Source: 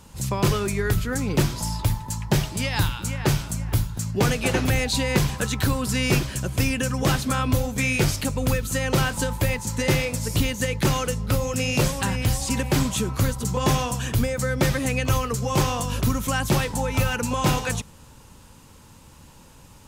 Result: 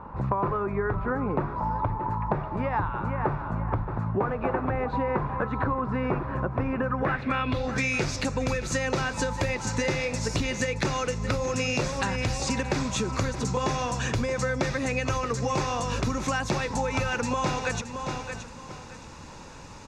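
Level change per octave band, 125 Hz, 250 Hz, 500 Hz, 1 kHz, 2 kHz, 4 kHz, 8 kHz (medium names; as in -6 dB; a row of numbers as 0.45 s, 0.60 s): -7.0 dB, -4.5 dB, -1.5 dB, +1.0 dB, -3.0 dB, -7.0 dB, -7.5 dB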